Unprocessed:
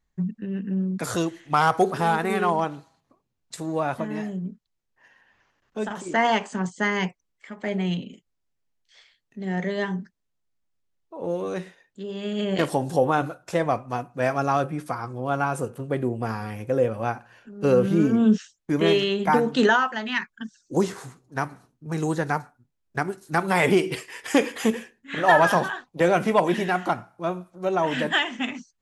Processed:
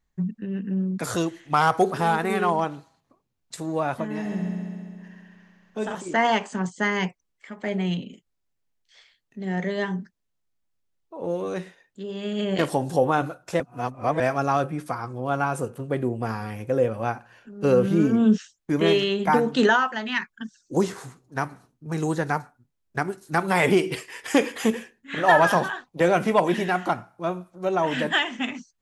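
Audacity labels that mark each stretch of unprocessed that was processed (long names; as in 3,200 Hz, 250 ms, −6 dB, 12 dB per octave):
4.120000	5.950000	echo machine with several playback heads 67 ms, heads first and second, feedback 72%, level −8 dB
13.600000	14.200000	reverse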